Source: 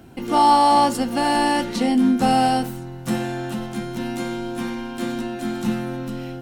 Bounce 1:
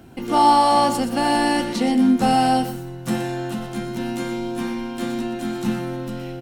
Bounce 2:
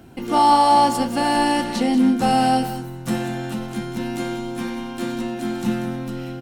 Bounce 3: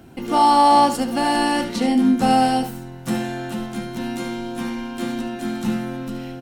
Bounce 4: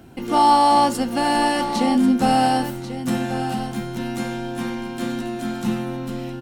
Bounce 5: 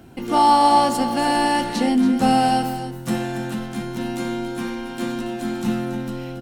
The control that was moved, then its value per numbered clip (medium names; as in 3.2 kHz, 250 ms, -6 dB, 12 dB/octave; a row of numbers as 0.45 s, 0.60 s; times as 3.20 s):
delay, time: 120 ms, 189 ms, 73 ms, 1090 ms, 280 ms